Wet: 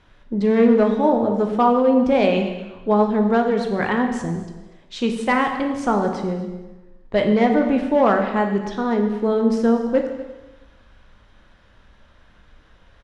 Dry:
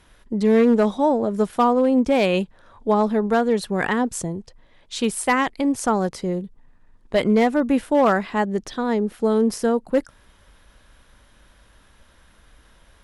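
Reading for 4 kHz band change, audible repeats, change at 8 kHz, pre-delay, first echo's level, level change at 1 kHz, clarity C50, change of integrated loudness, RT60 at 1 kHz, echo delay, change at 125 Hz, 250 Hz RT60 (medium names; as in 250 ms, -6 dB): -1.5 dB, 1, under -10 dB, 6 ms, -18.0 dB, +1.5 dB, 6.5 dB, +1.5 dB, 1.1 s, 242 ms, +2.0 dB, 1.0 s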